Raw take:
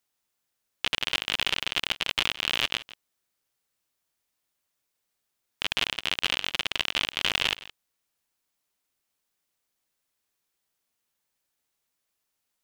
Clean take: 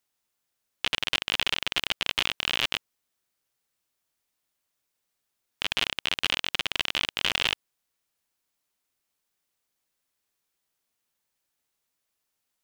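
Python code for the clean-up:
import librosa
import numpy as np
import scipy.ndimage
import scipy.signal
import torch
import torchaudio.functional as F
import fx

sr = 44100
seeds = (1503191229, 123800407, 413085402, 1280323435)

y = fx.fix_echo_inverse(x, sr, delay_ms=167, level_db=-18.0)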